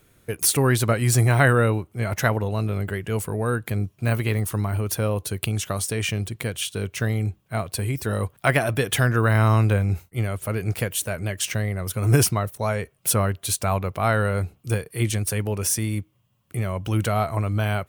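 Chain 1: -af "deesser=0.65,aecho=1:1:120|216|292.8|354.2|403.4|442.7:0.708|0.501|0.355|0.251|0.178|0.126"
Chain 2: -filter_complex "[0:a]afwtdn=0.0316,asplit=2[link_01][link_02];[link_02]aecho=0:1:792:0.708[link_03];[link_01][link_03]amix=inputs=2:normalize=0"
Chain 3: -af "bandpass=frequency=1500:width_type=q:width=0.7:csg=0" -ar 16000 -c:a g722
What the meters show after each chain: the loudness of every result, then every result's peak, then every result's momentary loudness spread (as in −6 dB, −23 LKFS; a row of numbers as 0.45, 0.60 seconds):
−21.5, −22.5, −30.5 LKFS; −4.5, −4.5, −5.5 dBFS; 9, 9, 12 LU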